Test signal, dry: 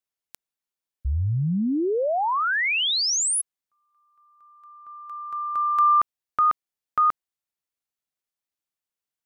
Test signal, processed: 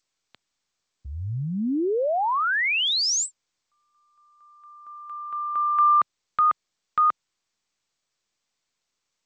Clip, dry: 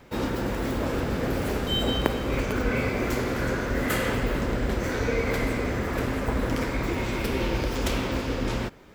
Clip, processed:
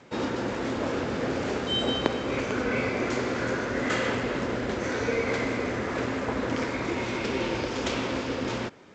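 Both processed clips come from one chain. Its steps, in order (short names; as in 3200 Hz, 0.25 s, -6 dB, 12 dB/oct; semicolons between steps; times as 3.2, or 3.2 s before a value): HPF 130 Hz 12 dB/oct; dynamic EQ 170 Hz, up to -4 dB, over -44 dBFS, Q 2.2; G.722 64 kbps 16000 Hz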